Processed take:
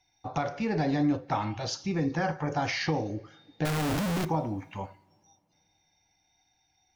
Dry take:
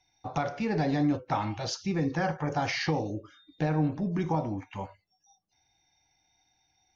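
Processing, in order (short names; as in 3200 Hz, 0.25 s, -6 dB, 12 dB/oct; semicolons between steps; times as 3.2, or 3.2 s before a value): 3.65–4.25 infinite clipping; two-slope reverb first 0.48 s, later 2.7 s, from -15 dB, DRR 18 dB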